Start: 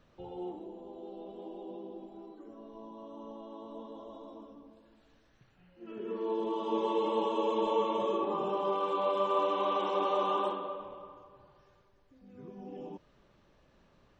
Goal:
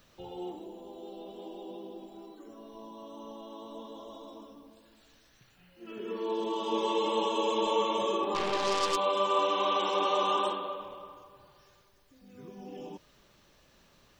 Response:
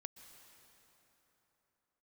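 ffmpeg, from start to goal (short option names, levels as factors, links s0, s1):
-filter_complex "[0:a]asplit=3[s0][s1][s2];[s0]afade=t=out:st=8.34:d=0.02[s3];[s1]aeval=exprs='0.0841*(cos(1*acos(clip(val(0)/0.0841,-1,1)))-cos(1*PI/2))+0.00944*(cos(8*acos(clip(val(0)/0.0841,-1,1)))-cos(8*PI/2))':c=same,afade=t=in:st=8.34:d=0.02,afade=t=out:st=8.95:d=0.02[s4];[s2]afade=t=in:st=8.95:d=0.02[s5];[s3][s4][s5]amix=inputs=3:normalize=0,crystalizer=i=5.5:c=0"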